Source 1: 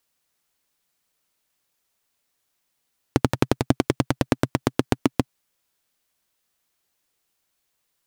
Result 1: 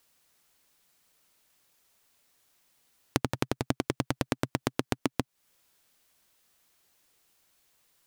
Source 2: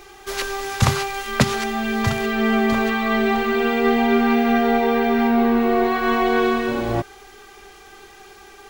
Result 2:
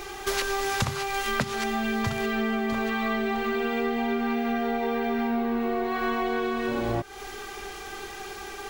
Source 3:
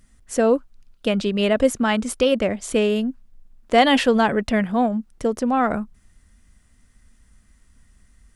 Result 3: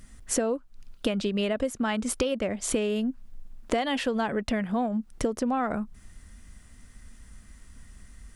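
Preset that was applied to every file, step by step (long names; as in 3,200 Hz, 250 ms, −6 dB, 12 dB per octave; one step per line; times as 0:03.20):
downward compressor 12 to 1, threshold −30 dBFS
level +6 dB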